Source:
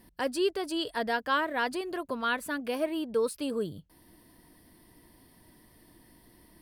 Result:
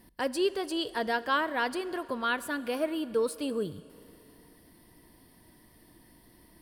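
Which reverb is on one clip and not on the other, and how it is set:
four-comb reverb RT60 3 s, combs from 32 ms, DRR 16.5 dB

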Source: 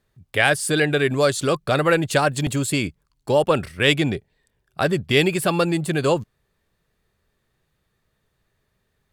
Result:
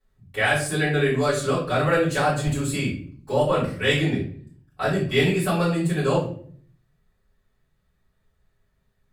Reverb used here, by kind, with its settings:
rectangular room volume 54 cubic metres, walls mixed, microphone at 3.5 metres
level −17.5 dB

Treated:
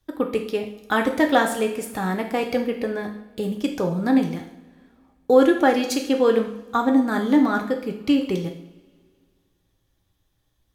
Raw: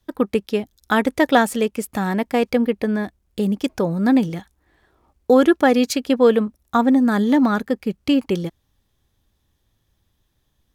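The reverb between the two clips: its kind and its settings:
coupled-rooms reverb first 0.6 s, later 2.2 s, from −21 dB, DRR 2.5 dB
level −4 dB

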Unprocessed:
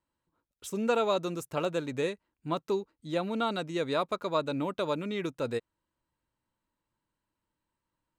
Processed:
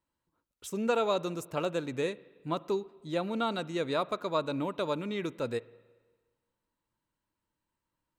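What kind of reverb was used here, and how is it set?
spring reverb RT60 1.4 s, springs 44/53 ms, chirp 60 ms, DRR 19.5 dB
level −1 dB

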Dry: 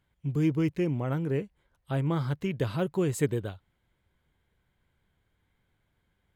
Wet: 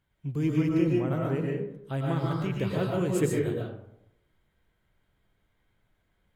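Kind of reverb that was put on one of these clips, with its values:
comb and all-pass reverb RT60 0.79 s, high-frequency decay 0.45×, pre-delay 80 ms, DRR −2.5 dB
level −2.5 dB

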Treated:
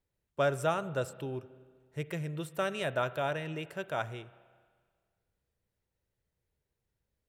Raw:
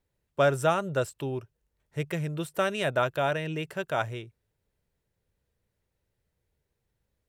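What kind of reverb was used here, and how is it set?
spring reverb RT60 1.7 s, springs 31/40 ms, chirp 55 ms, DRR 15.5 dB
level −5.5 dB

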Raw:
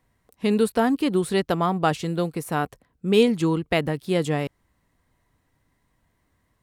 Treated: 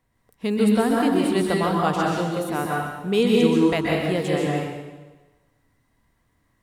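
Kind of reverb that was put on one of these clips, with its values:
dense smooth reverb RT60 1.2 s, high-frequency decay 0.9×, pre-delay 115 ms, DRR −3 dB
level −3 dB

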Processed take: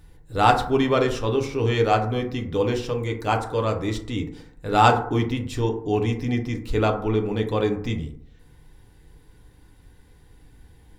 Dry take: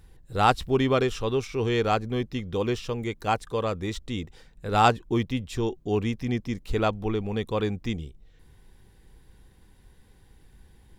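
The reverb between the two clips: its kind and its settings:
feedback delay network reverb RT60 0.65 s, low-frequency decay 1×, high-frequency decay 0.35×, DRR 2.5 dB
level +1.5 dB

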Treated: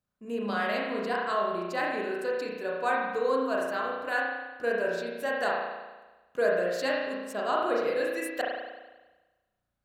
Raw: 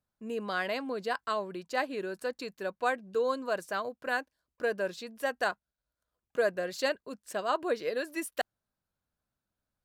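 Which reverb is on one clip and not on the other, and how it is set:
spring reverb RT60 1.2 s, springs 34 ms, chirp 60 ms, DRR −3.5 dB
level −1.5 dB

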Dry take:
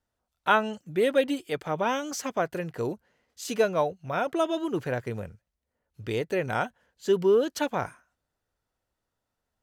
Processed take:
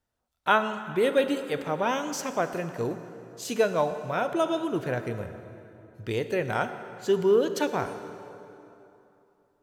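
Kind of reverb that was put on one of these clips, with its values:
dense smooth reverb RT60 3 s, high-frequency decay 0.7×, DRR 9 dB

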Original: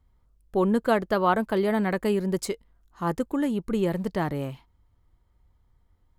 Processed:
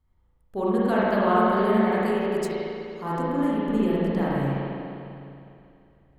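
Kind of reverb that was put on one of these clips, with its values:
spring reverb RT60 2.7 s, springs 36/50 ms, chirp 45 ms, DRR −8.5 dB
level −7 dB

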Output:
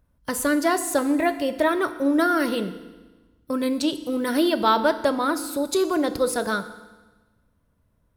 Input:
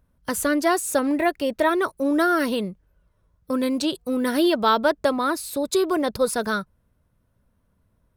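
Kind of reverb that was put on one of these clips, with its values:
feedback delay network reverb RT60 1.2 s, low-frequency decay 1.2×, high-frequency decay 1×, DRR 10 dB
level −1 dB

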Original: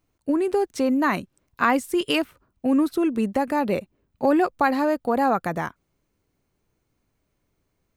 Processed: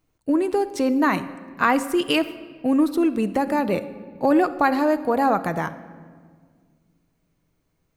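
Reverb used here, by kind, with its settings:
rectangular room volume 2,400 cubic metres, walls mixed, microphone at 0.56 metres
level +1 dB

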